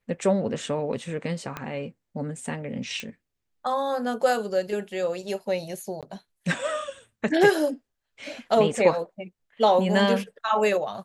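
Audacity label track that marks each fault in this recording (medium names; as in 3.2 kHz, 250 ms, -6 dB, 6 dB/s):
1.570000	1.570000	pop -17 dBFS
3.000000	3.000000	pop -18 dBFS
6.010000	6.030000	dropout 17 ms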